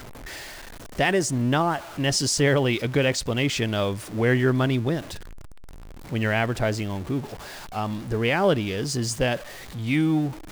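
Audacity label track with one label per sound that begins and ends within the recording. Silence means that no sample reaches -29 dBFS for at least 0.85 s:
0.990000	5.150000	sound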